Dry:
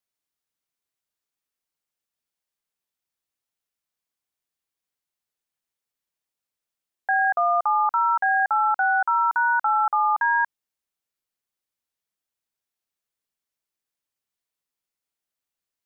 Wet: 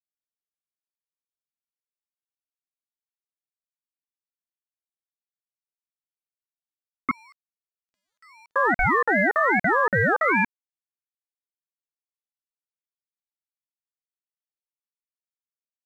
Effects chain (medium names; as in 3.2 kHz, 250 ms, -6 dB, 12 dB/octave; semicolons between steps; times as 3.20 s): 7.11–8.56 s: inverse Chebyshev high-pass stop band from 890 Hz, stop band 60 dB; crossover distortion -53 dBFS; ring modulator with a swept carrier 520 Hz, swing 45%, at 2.5 Hz; trim +3.5 dB